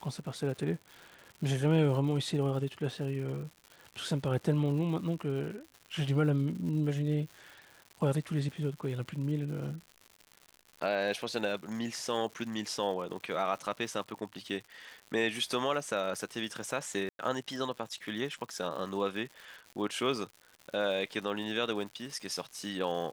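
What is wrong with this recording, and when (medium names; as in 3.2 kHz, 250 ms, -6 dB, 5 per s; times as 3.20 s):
crackle 170 per s -41 dBFS
17.09–17.19 s: dropout 102 ms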